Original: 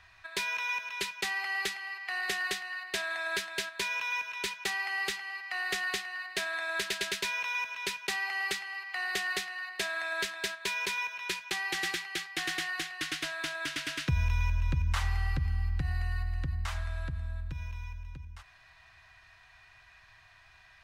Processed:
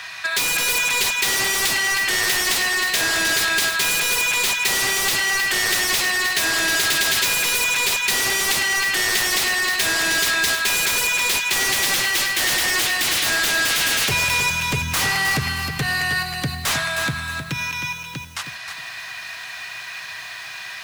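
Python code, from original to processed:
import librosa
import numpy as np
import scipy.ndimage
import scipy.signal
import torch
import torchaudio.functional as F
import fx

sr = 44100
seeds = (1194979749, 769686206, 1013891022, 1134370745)

p1 = scipy.signal.sosfilt(scipy.signal.butter(4, 140.0, 'highpass', fs=sr, output='sos'), x)
p2 = fx.high_shelf(p1, sr, hz=2300.0, db=12.0)
p3 = fx.fold_sine(p2, sr, drive_db=19, ceiling_db=-14.5)
p4 = p2 + (p3 * librosa.db_to_amplitude(-7.5))
p5 = fx.echo_crushed(p4, sr, ms=313, feedback_pct=35, bits=7, wet_db=-7.0)
y = p5 * librosa.db_to_amplitude(2.5)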